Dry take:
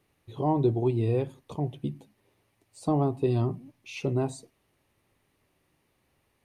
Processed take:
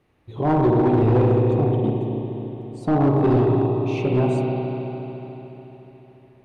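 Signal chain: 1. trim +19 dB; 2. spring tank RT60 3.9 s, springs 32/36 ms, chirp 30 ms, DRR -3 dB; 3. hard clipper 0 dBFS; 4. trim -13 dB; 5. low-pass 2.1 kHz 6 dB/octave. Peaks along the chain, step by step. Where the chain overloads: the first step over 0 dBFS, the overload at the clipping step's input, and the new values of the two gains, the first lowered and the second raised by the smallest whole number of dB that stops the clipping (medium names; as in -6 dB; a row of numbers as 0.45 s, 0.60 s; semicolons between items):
+5.5 dBFS, +9.5 dBFS, 0.0 dBFS, -13.0 dBFS, -13.0 dBFS; step 1, 9.5 dB; step 1 +9 dB, step 4 -3 dB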